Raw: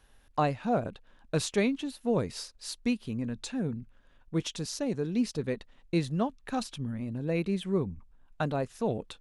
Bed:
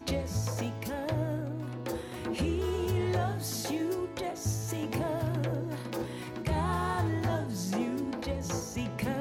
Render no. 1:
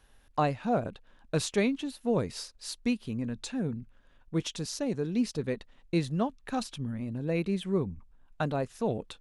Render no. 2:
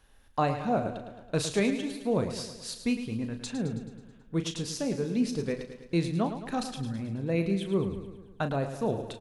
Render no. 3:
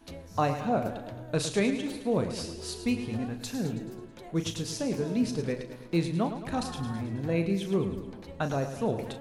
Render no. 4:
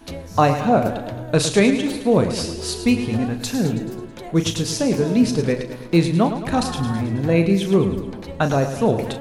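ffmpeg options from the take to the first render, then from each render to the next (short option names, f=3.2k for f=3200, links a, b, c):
-af anull
-filter_complex "[0:a]asplit=2[a][b];[b]adelay=36,volume=-10dB[c];[a][c]amix=inputs=2:normalize=0,asplit=2[d][e];[e]aecho=0:1:108|216|324|432|540|648|756:0.316|0.18|0.103|0.0586|0.0334|0.019|0.0108[f];[d][f]amix=inputs=2:normalize=0"
-filter_complex "[1:a]volume=-12dB[a];[0:a][a]amix=inputs=2:normalize=0"
-af "volume=11dB"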